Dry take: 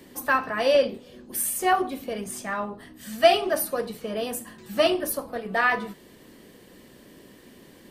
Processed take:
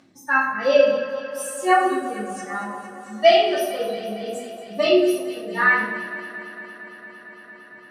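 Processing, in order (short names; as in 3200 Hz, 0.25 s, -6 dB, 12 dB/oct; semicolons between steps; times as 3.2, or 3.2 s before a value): per-bin expansion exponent 2; vibrato 0.58 Hz 13 cents; on a send: echo with dull and thin repeats by turns 0.114 s, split 1300 Hz, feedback 86%, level -12.5 dB; on the sum: upward compressor, threshold -44 dBFS; BPF 230–7000 Hz; shoebox room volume 230 m³, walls mixed, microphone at 2.5 m; gain -1 dB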